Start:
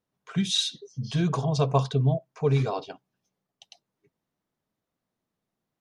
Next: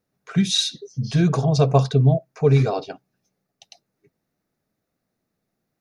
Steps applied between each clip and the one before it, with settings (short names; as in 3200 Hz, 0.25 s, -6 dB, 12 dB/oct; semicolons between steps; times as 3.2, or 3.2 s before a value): thirty-one-band EQ 1000 Hz -9 dB, 3150 Hz -9 dB, 8000 Hz -5 dB; gain +7 dB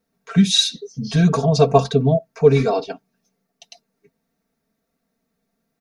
comb 4.4 ms, depth 79%; gain +1.5 dB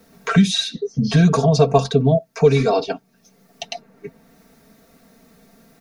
three-band squash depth 70%; gain +1 dB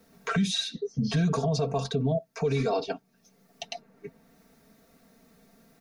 limiter -10.5 dBFS, peak gain reduction 9 dB; gain -7.5 dB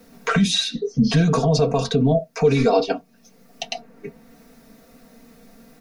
reverb RT60 0.15 s, pre-delay 3 ms, DRR 6.5 dB; gain +8.5 dB